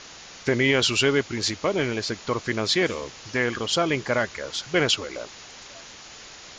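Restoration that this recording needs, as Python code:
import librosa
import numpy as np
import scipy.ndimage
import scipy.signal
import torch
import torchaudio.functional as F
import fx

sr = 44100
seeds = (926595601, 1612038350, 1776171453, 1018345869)

y = fx.noise_reduce(x, sr, print_start_s=5.93, print_end_s=6.43, reduce_db=25.0)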